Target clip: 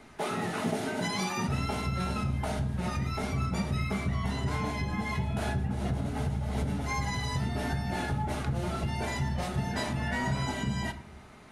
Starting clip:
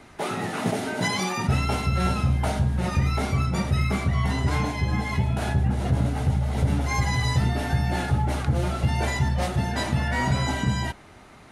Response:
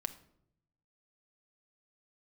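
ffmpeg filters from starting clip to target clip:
-filter_complex "[0:a]alimiter=limit=-17dB:level=0:latency=1:release=192[link_01];[1:a]atrim=start_sample=2205,asetrate=52920,aresample=44100[link_02];[link_01][link_02]afir=irnorm=-1:irlink=0,volume=-1.5dB"

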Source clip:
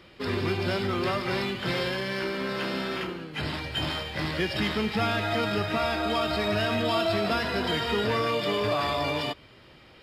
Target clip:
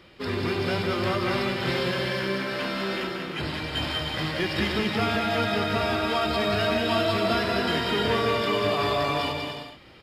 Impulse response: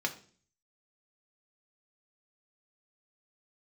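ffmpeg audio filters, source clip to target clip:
-af "aecho=1:1:190|304|372.4|413.4|438.1:0.631|0.398|0.251|0.158|0.1"

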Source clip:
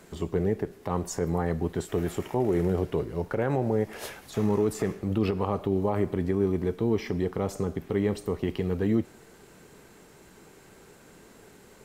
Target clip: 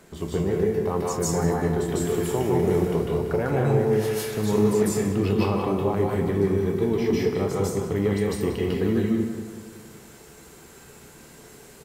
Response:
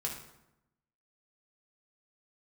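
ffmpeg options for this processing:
-filter_complex "[0:a]asplit=2[link_01][link_02];[link_02]adelay=30,volume=-11.5dB[link_03];[link_01][link_03]amix=inputs=2:normalize=0,asplit=2[link_04][link_05];[link_05]adelay=187,lowpass=frequency=3500:poles=1,volume=-9dB,asplit=2[link_06][link_07];[link_07]adelay=187,lowpass=frequency=3500:poles=1,volume=0.53,asplit=2[link_08][link_09];[link_09]adelay=187,lowpass=frequency=3500:poles=1,volume=0.53,asplit=2[link_10][link_11];[link_11]adelay=187,lowpass=frequency=3500:poles=1,volume=0.53,asplit=2[link_12][link_13];[link_13]adelay=187,lowpass=frequency=3500:poles=1,volume=0.53,asplit=2[link_14][link_15];[link_15]adelay=187,lowpass=frequency=3500:poles=1,volume=0.53[link_16];[link_04][link_06][link_08][link_10][link_12][link_14][link_16]amix=inputs=7:normalize=0,asplit=2[link_17][link_18];[1:a]atrim=start_sample=2205,highshelf=frequency=3200:gain=11,adelay=149[link_19];[link_18][link_19]afir=irnorm=-1:irlink=0,volume=-2.5dB[link_20];[link_17][link_20]amix=inputs=2:normalize=0"

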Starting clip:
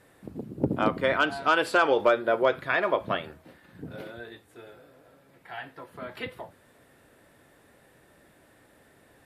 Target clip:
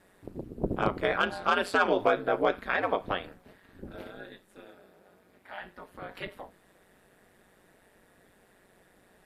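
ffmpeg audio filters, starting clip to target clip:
ffmpeg -i in.wav -filter_complex "[0:a]aeval=exprs='val(0)*sin(2*PI*93*n/s)':channel_layout=same,asettb=1/sr,asplit=3[link_01][link_02][link_03];[link_01]atrim=end=4.664[link_04];[link_02]atrim=start=4.66:end=5.61,asetpts=PTS-STARTPTS,afade=type=in:duration=0.004:curve=qsin,afade=type=out:start_time=0.946:duration=0.004:curve=qsin,highpass=69[link_05];[link_03]atrim=start=5.606[link_06];[link_04][link_05]acrossfade=duration=0.004:curve1=hsin:curve2=qsin[link_07];[link_07][link_06]acrossfade=duration=0.004:curve1=qsin:curve2=hsin" out.wav

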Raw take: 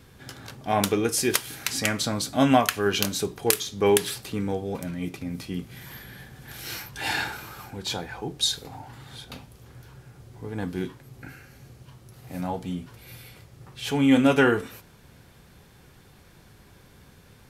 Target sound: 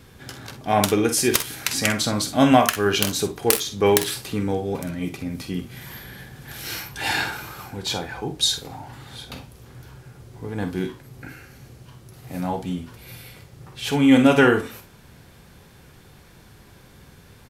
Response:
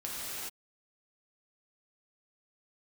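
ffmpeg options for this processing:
-af "aeval=exprs='(mod(1.78*val(0)+1,2)-1)/1.78':channel_layout=same,aecho=1:1:48|61:0.282|0.2,volume=3.5dB"

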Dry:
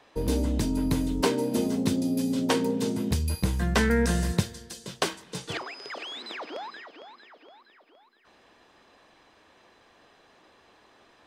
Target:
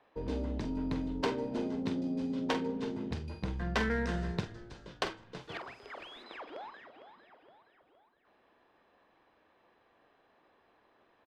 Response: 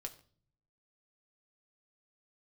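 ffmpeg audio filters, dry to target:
-filter_complex "[0:a]asplit=6[link_01][link_02][link_03][link_04][link_05][link_06];[link_02]adelay=327,afreqshift=-58,volume=-15.5dB[link_07];[link_03]adelay=654,afreqshift=-116,volume=-21.2dB[link_08];[link_04]adelay=981,afreqshift=-174,volume=-26.9dB[link_09];[link_05]adelay=1308,afreqshift=-232,volume=-32.5dB[link_10];[link_06]adelay=1635,afreqshift=-290,volume=-38.2dB[link_11];[link_01][link_07][link_08][link_09][link_10][link_11]amix=inputs=6:normalize=0,adynamicsmooth=sensitivity=3:basefreq=2700,asettb=1/sr,asplit=3[link_12][link_13][link_14];[link_12]atrim=end=5.364[link_15];[link_13]atrim=start=5.36:end=6.24,asetpts=PTS-STARTPTS,afade=type=in:duration=0.004:curve=qsin,afade=type=out:start_time=0.876:duration=0.004:curve=qsin,aeval=exprs='val(0)*gte(abs(val(0)),0.00237)':channel_layout=same[link_16];[link_14]atrim=start=6.236[link_17];[link_15][link_16]acrossfade=duration=0.004:curve1=hsin:curve2=qsin[link_18];[link_18][link_17]acrossfade=duration=0.004:curve1=qsin:curve2=hsin,lowpass=7100,lowshelf=frequency=340:gain=-7,asplit=2[link_19][link_20];[link_20]adelay=46,volume=-10dB[link_21];[link_19][link_21]amix=inputs=2:normalize=0,asplit=2[link_22][link_23];[link_23]adynamicsmooth=sensitivity=6:basefreq=1000,volume=-11dB[link_24];[link_22][link_24]amix=inputs=2:normalize=0,volume=-7.5dB"

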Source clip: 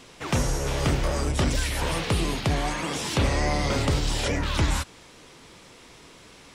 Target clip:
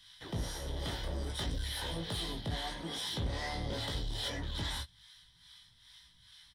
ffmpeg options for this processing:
ffmpeg -i in.wav -filter_complex "[0:a]superequalizer=10b=0.501:12b=0.355:13b=2.24:15b=0.316,acrossover=split=140|1200[link_01][link_02][link_03];[link_02]aeval=exprs='sgn(val(0))*max(abs(val(0))-0.00794,0)':channel_layout=same[link_04];[link_01][link_04][link_03]amix=inputs=3:normalize=0,acrossover=split=620[link_05][link_06];[link_05]aeval=exprs='val(0)*(1-0.7/2+0.7/2*cos(2*PI*2.4*n/s))':channel_layout=same[link_07];[link_06]aeval=exprs='val(0)*(1-0.7/2-0.7/2*cos(2*PI*2.4*n/s))':channel_layout=same[link_08];[link_07][link_08]amix=inputs=2:normalize=0,asoftclip=type=tanh:threshold=-24dB,aecho=1:1:18|30:0.596|0.178,volume=-7.5dB" out.wav

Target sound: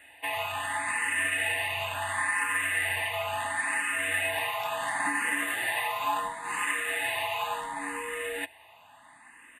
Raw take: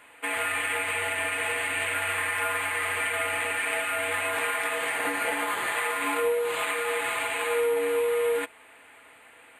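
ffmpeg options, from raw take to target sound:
ffmpeg -i in.wav -filter_complex "[0:a]aecho=1:1:1.1:0.74,asplit=2[link_01][link_02];[link_02]afreqshift=0.72[link_03];[link_01][link_03]amix=inputs=2:normalize=1" out.wav

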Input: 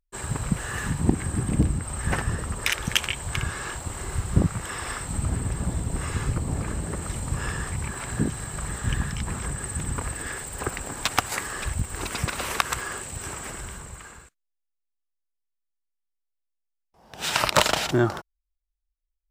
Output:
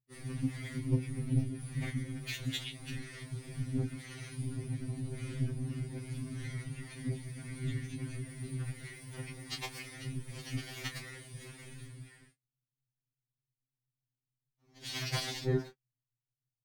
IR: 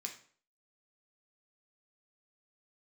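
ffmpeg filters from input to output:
-filter_complex "[0:a]aeval=exprs='if(lt(val(0),0),0.708*val(0),val(0))':channel_layout=same,equalizer=frequency=1900:width_type=o:width=0.6:gain=11,afftfilt=real='hypot(re,im)*cos(2*PI*random(0))':imag='hypot(re,im)*sin(2*PI*random(1))':win_size=512:overlap=0.75,equalizer=frequency=125:width_type=o:width=1:gain=9,equalizer=frequency=250:width_type=o:width=1:gain=6,equalizer=frequency=500:width_type=o:width=1:gain=-3,equalizer=frequency=1000:width_type=o:width=1:gain=-9,equalizer=frequency=2000:width_type=o:width=1:gain=-6,equalizer=frequency=4000:width_type=o:width=1:gain=6,equalizer=frequency=8000:width_type=o:width=1:gain=-5,asetrate=51156,aresample=44100,asplit=2[link_01][link_02];[link_02]adelay=26,volume=-9dB[link_03];[link_01][link_03]amix=inputs=2:normalize=0,afftfilt=real='re*2.45*eq(mod(b,6),0)':imag='im*2.45*eq(mod(b,6),0)':win_size=2048:overlap=0.75,volume=-6dB"

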